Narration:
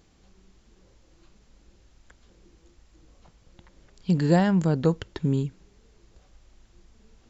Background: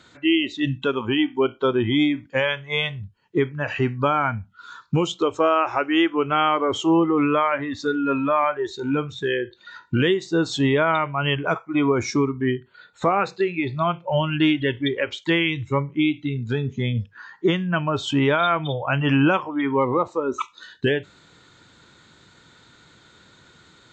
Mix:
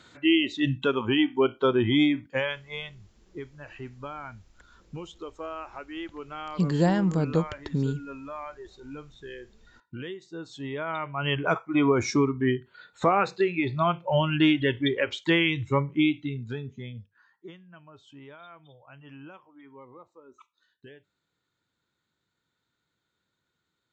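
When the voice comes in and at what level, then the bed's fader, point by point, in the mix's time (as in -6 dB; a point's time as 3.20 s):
2.50 s, -2.5 dB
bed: 2.19 s -2 dB
3.06 s -18 dB
10.54 s -18 dB
11.45 s -2 dB
16.04 s -2 dB
17.67 s -28 dB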